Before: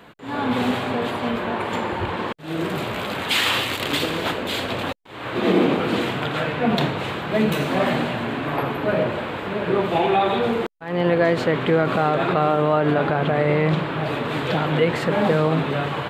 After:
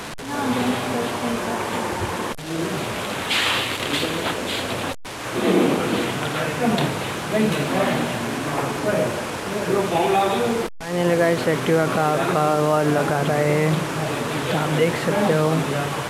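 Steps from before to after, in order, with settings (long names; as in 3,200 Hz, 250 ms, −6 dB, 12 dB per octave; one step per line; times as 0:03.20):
linear delta modulator 64 kbit/s, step −26.5 dBFS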